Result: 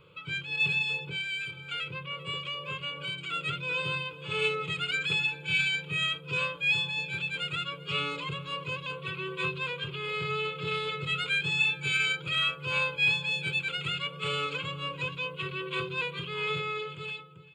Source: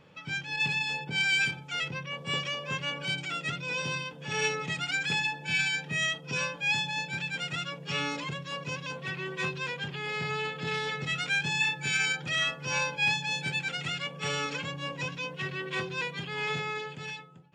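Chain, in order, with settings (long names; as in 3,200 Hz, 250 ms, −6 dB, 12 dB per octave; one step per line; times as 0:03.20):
parametric band 200 Hz +2 dB 1.5 octaves
slap from a distant wall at 67 metres, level −17 dB
0:00.98–0:03.33: downward compressor 6 to 1, threshold −33 dBFS, peak gain reduction 10 dB
parametric band 630 Hz −10.5 dB 0.3 octaves
phaser with its sweep stopped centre 1,200 Hz, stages 8
level +3 dB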